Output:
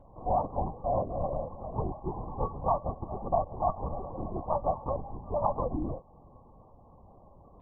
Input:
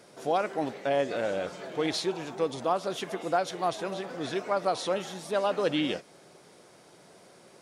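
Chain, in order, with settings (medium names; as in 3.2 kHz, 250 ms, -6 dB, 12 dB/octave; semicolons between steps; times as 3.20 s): in parallel at +3 dB: compression, threshold -38 dBFS, peak gain reduction 16 dB; on the sum: dynamic bell 790 Hz, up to +5 dB, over -38 dBFS, Q 1.1; brick-wall FIR low-pass 1.2 kHz; LPC vocoder at 8 kHz whisper; peaking EQ 430 Hz -11 dB 1.1 oct; trim -2.5 dB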